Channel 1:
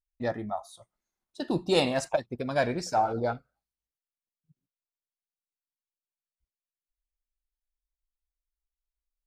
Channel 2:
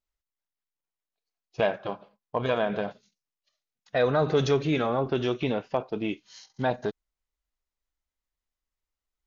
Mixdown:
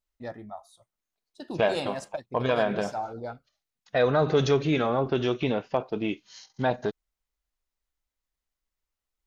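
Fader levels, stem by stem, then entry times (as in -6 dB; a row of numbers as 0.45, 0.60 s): -7.5, +1.0 dB; 0.00, 0.00 s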